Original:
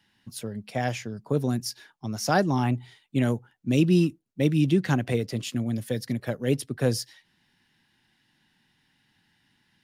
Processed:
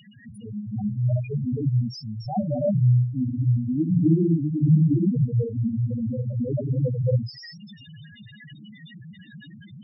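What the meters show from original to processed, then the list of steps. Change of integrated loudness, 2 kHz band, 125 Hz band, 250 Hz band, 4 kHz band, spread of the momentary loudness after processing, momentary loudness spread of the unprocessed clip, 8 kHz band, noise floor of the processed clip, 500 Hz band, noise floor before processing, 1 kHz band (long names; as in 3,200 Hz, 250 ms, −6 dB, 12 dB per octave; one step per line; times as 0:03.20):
+3.0 dB, below −10 dB, +7.0 dB, +2.0 dB, can't be measured, 14 LU, 14 LU, below −20 dB, −48 dBFS, −2.0 dB, −69 dBFS, −8.0 dB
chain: converter with a step at zero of −33 dBFS
on a send: echo through a band-pass that steps 196 ms, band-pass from 4,500 Hz, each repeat 0.7 octaves, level −1 dB
on the sum: reverb whose tail is shaped and stops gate 330 ms rising, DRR −5.5 dB
spectral peaks only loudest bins 2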